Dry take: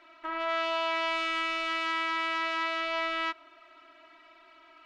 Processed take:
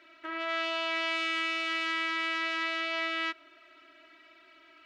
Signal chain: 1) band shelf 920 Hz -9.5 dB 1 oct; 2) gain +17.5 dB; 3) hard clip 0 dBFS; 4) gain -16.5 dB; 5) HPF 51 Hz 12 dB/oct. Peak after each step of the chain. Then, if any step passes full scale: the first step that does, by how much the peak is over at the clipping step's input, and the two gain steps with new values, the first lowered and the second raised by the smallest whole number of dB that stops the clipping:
-19.5, -2.0, -2.0, -18.5, -18.5 dBFS; no overload

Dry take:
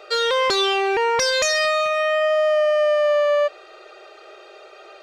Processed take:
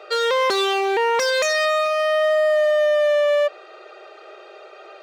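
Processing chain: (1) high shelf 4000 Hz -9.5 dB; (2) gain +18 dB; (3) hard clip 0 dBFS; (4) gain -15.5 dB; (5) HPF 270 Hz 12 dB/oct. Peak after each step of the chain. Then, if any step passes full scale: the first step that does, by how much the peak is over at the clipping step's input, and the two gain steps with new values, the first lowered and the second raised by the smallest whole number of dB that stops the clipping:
-12.5, +5.5, 0.0, -15.5, -11.0 dBFS; step 2, 5.5 dB; step 2 +12 dB, step 4 -9.5 dB

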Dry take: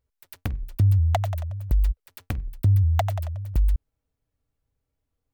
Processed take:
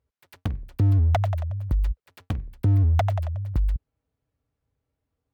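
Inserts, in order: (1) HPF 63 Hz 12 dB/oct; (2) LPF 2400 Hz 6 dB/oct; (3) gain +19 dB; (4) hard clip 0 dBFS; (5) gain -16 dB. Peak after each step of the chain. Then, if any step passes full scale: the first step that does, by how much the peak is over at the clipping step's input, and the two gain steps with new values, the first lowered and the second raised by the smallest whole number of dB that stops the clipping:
-11.5, -12.0, +7.0, 0.0, -16.0 dBFS; step 3, 7.0 dB; step 3 +12 dB, step 5 -9 dB

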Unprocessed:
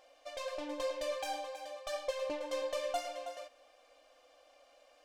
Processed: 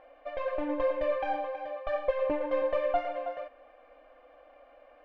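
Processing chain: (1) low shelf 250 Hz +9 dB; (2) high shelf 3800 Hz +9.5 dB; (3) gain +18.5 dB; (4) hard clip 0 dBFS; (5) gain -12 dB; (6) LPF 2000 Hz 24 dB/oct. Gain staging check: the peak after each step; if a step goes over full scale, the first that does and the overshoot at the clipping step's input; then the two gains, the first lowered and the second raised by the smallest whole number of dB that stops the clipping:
-21.5, -20.5, -2.0, -2.0, -14.0, -15.0 dBFS; no overload

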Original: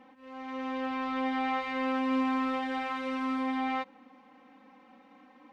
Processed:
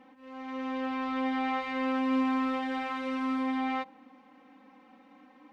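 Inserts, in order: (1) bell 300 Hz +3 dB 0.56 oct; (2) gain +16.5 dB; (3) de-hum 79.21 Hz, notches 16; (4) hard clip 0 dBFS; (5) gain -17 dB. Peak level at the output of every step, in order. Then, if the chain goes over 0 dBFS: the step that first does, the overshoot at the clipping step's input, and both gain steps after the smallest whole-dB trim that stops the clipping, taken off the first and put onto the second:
-19.5, -3.0, -3.0, -3.0, -20.0 dBFS; no overload

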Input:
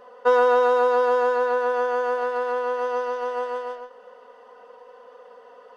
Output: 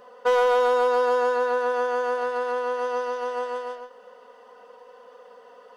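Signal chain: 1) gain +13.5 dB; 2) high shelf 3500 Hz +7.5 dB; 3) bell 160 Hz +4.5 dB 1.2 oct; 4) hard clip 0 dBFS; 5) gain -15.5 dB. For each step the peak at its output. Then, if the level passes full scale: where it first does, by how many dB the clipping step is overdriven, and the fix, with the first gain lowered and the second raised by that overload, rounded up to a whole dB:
+4.5, +5.0, +5.5, 0.0, -15.5 dBFS; step 1, 5.5 dB; step 1 +7.5 dB, step 5 -9.5 dB

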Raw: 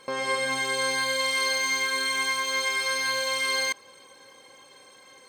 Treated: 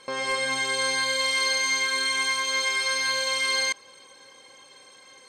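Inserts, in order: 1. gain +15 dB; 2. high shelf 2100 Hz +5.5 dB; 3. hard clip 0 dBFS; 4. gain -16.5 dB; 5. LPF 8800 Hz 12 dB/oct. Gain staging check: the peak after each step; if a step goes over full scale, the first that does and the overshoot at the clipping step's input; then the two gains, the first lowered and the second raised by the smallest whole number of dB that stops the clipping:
+2.0, +4.5, 0.0, -16.5, -15.5 dBFS; step 1, 4.5 dB; step 1 +10 dB, step 4 -11.5 dB

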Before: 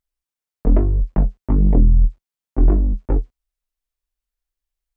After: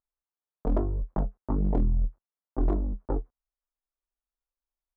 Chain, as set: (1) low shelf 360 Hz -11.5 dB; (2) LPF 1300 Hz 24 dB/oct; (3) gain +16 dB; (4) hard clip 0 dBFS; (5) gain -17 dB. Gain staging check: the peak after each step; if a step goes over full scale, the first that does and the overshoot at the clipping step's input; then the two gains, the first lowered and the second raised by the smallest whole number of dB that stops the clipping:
-12.5, -12.5, +3.5, 0.0, -17.0 dBFS; step 3, 3.5 dB; step 3 +12 dB, step 5 -13 dB

